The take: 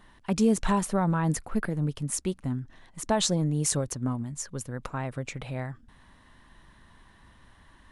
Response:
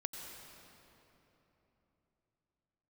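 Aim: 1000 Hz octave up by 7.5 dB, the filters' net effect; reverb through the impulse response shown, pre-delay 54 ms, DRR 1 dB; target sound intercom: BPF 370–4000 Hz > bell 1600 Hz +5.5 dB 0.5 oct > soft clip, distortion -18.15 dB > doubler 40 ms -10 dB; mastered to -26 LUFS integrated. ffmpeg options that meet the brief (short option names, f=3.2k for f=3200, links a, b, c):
-filter_complex "[0:a]equalizer=f=1k:t=o:g=8,asplit=2[a][b];[1:a]atrim=start_sample=2205,adelay=54[c];[b][c]afir=irnorm=-1:irlink=0,volume=-0.5dB[d];[a][d]amix=inputs=2:normalize=0,highpass=370,lowpass=4k,equalizer=f=1.6k:t=o:w=0.5:g=5.5,asoftclip=threshold=-13dB,asplit=2[e][f];[f]adelay=40,volume=-10dB[g];[e][g]amix=inputs=2:normalize=0,volume=2dB"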